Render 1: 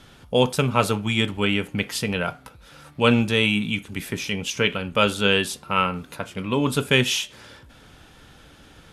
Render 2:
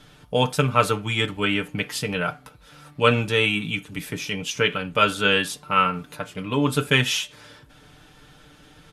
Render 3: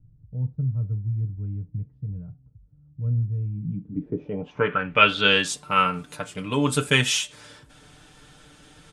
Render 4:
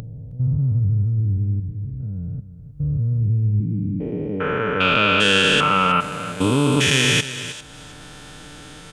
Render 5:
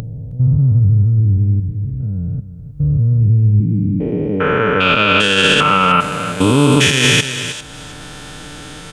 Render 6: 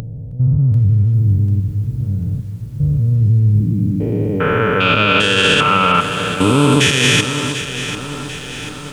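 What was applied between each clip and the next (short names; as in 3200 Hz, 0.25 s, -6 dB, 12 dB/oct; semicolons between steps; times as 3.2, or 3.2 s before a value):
comb 6.7 ms, depth 57%; dynamic EQ 1500 Hz, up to +5 dB, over -33 dBFS, Q 1.5; gain -2.5 dB
low-pass sweep 100 Hz -> 8700 Hz, 3.51–5.58; gain -1 dB
stepped spectrum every 0.4 s; echo 0.314 s -14 dB; upward compressor, threshold -42 dBFS; gain +9 dB
maximiser +8.5 dB; gain -1 dB
lo-fi delay 0.742 s, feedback 55%, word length 7-bit, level -11 dB; gain -1 dB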